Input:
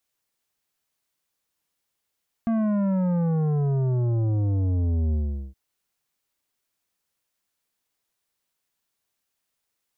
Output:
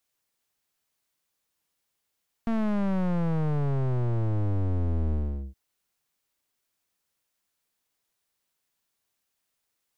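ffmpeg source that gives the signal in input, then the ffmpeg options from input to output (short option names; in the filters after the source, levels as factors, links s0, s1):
-f lavfi -i "aevalsrc='0.0841*clip((3.07-t)/0.41,0,1)*tanh(3.35*sin(2*PI*230*3.07/log(65/230)*(exp(log(65/230)*t/3.07)-1)))/tanh(3.35)':d=3.07:s=44100"
-af "aeval=exprs='clip(val(0),-1,0.0168)':c=same"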